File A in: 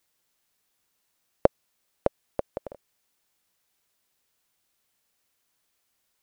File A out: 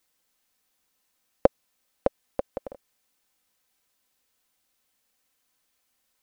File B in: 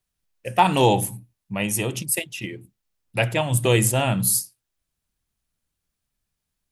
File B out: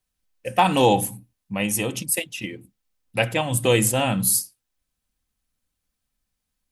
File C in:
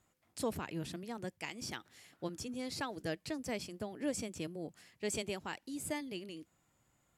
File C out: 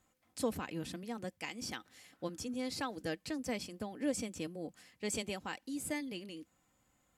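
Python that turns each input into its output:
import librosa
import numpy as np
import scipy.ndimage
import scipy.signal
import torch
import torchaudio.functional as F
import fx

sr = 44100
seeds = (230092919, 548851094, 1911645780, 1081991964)

y = x + 0.38 * np.pad(x, (int(3.9 * sr / 1000.0), 0))[:len(x)]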